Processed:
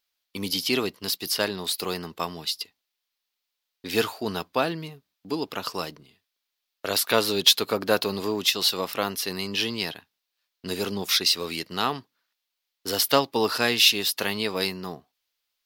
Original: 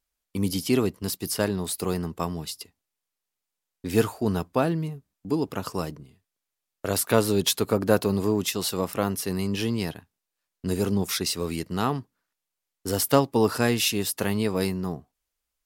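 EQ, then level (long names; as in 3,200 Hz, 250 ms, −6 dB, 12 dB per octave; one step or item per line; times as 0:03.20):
RIAA equalisation recording
high shelf with overshoot 5,900 Hz −13.5 dB, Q 1.5
+1.0 dB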